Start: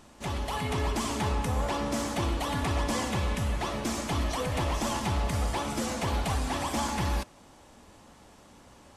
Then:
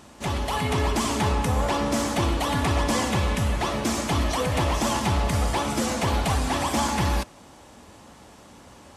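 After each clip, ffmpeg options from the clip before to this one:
ffmpeg -i in.wav -af "highpass=47,volume=6dB" out.wav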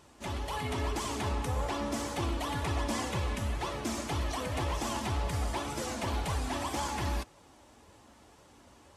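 ffmpeg -i in.wav -af "flanger=delay=1.9:depth=1.5:regen=-41:speed=1.9:shape=triangular,volume=-5.5dB" out.wav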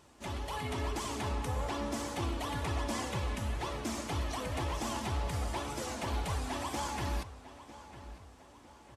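ffmpeg -i in.wav -filter_complex "[0:a]asplit=2[link_01][link_02];[link_02]adelay=952,lowpass=frequency=4000:poles=1,volume=-15dB,asplit=2[link_03][link_04];[link_04]adelay=952,lowpass=frequency=4000:poles=1,volume=0.47,asplit=2[link_05][link_06];[link_06]adelay=952,lowpass=frequency=4000:poles=1,volume=0.47,asplit=2[link_07][link_08];[link_08]adelay=952,lowpass=frequency=4000:poles=1,volume=0.47[link_09];[link_01][link_03][link_05][link_07][link_09]amix=inputs=5:normalize=0,volume=-2.5dB" out.wav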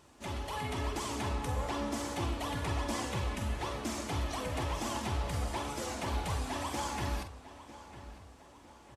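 ffmpeg -i in.wav -filter_complex "[0:a]asplit=2[link_01][link_02];[link_02]adelay=46,volume=-9dB[link_03];[link_01][link_03]amix=inputs=2:normalize=0" out.wav

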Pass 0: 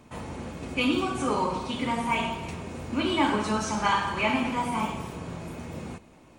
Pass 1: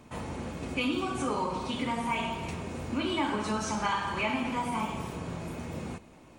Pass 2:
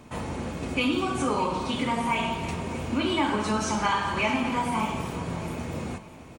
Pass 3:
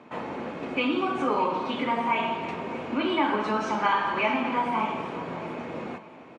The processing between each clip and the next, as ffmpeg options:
ffmpeg -i in.wav -af "acompressor=threshold=-30dB:ratio=2" out.wav
ffmpeg -i in.wav -af "aecho=1:1:611|1222|1833:0.158|0.0571|0.0205,volume=4.5dB" out.wav
ffmpeg -i in.wav -af "highpass=270,lowpass=2600,volume=2dB" out.wav

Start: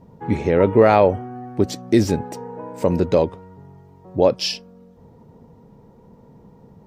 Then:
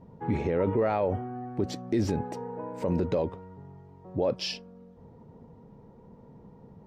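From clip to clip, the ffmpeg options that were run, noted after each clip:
ffmpeg -i in.wav -af "alimiter=limit=-13.5dB:level=0:latency=1:release=28,lowpass=frequency=2800:poles=1,volume=-3.5dB" out.wav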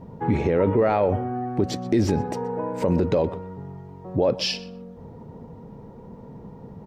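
ffmpeg -i in.wav -filter_complex "[0:a]asplit=2[link_01][link_02];[link_02]acompressor=threshold=-34dB:ratio=6,volume=-1dB[link_03];[link_01][link_03]amix=inputs=2:normalize=0,asplit=2[link_04][link_05];[link_05]adelay=124,lowpass=frequency=4200:poles=1,volume=-17dB,asplit=2[link_06][link_07];[link_07]adelay=124,lowpass=frequency=4200:poles=1,volume=0.18[link_08];[link_04][link_06][link_08]amix=inputs=3:normalize=0,volume=4dB" out.wav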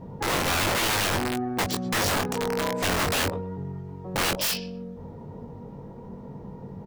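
ffmpeg -i in.wav -filter_complex "[0:a]aeval=exprs='(mod(10.6*val(0)+1,2)-1)/10.6':channel_layout=same,asplit=2[link_01][link_02];[link_02]adelay=21,volume=-5.5dB[link_03];[link_01][link_03]amix=inputs=2:normalize=0" out.wav

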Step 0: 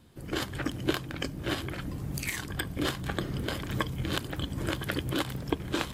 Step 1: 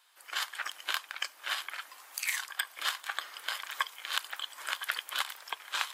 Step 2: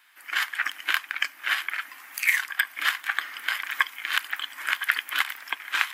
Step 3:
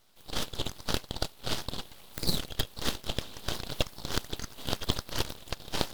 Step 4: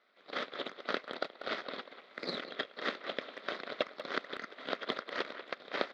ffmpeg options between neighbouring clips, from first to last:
ffmpeg -i in.wav -af "highpass=frequency=940:width=0.5412,highpass=frequency=940:width=1.3066,volume=2dB" out.wav
ffmpeg -i in.wav -af "equalizer=frequency=250:width_type=o:width=1:gain=10,equalizer=frequency=500:width_type=o:width=1:gain=-12,equalizer=frequency=1000:width_type=o:width=1:gain=-4,equalizer=frequency=2000:width_type=o:width=1:gain=8,equalizer=frequency=4000:width_type=o:width=1:gain=-7,equalizer=frequency=8000:width_type=o:width=1:gain=-7,volume=8dB" out.wav
ffmpeg -i in.wav -af "aeval=exprs='abs(val(0))':channel_layout=same,volume=-4dB" out.wav
ffmpeg -i in.wav -filter_complex "[0:a]highpass=frequency=270:width=0.5412,highpass=frequency=270:width=1.3066,equalizer=frequency=320:width_type=q:width=4:gain=-5,equalizer=frequency=590:width_type=q:width=4:gain=3,equalizer=frequency=880:width_type=q:width=4:gain=-9,equalizer=frequency=1300:width_type=q:width=4:gain=5,equalizer=frequency=2000:width_type=q:width=4:gain=7,equalizer=frequency=2900:width_type=q:width=4:gain=-9,lowpass=frequency=3400:width=0.5412,lowpass=frequency=3400:width=1.3066,asplit=2[link_01][link_02];[link_02]adelay=190,highpass=300,lowpass=3400,asoftclip=type=hard:threshold=-21dB,volume=-10dB[link_03];[link_01][link_03]amix=inputs=2:normalize=0" out.wav

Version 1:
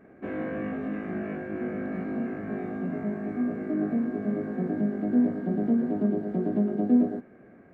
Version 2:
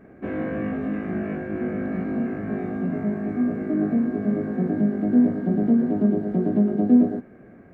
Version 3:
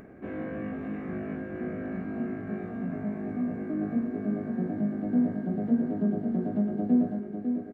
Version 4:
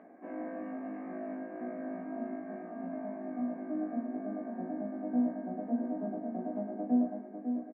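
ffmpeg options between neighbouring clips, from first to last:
ffmpeg -i in.wav -af "lowshelf=frequency=150:gain=8,volume=3dB" out.wav
ffmpeg -i in.wav -af "aecho=1:1:550:0.473,acompressor=mode=upward:threshold=-34dB:ratio=2.5,volume=-7.5dB" out.wav
ffmpeg -i in.wav -filter_complex "[0:a]highpass=frequency=260:width=0.5412,highpass=frequency=260:width=1.3066,equalizer=frequency=270:width_type=q:width=4:gain=4,equalizer=frequency=390:width_type=q:width=4:gain=-8,equalizer=frequency=700:width_type=q:width=4:gain=9,equalizer=frequency=1000:width_type=q:width=4:gain=5,equalizer=frequency=1400:width_type=q:width=4:gain=-7,lowpass=frequency=2100:width=0.5412,lowpass=frequency=2100:width=1.3066,asplit=2[link_01][link_02];[link_02]adelay=16,volume=-5dB[link_03];[link_01][link_03]amix=inputs=2:normalize=0,volume=-6dB" out.wav

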